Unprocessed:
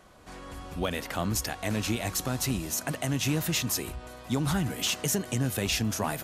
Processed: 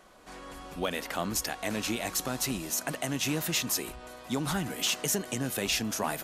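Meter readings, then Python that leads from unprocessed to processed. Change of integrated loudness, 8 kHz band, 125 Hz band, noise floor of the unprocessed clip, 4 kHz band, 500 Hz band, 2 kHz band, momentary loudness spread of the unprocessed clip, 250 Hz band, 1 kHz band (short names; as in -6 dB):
-1.5 dB, 0.0 dB, -7.5 dB, -46 dBFS, 0.0 dB, -0.5 dB, 0.0 dB, 12 LU, -3.0 dB, 0.0 dB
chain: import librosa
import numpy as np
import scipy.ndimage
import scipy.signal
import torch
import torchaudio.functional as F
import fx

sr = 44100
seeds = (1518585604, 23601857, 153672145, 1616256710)

y = fx.peak_eq(x, sr, hz=86.0, db=-14.5, octaves=1.4)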